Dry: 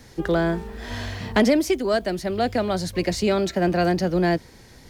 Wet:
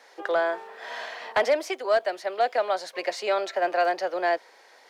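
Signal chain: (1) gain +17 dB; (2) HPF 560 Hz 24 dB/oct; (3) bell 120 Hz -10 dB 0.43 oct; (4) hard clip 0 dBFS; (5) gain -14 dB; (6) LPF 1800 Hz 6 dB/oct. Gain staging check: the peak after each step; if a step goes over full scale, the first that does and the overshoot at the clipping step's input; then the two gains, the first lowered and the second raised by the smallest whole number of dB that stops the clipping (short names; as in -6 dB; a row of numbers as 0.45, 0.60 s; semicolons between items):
+8.0, +6.5, +6.5, 0.0, -14.0, -14.0 dBFS; step 1, 6.5 dB; step 1 +10 dB, step 5 -7 dB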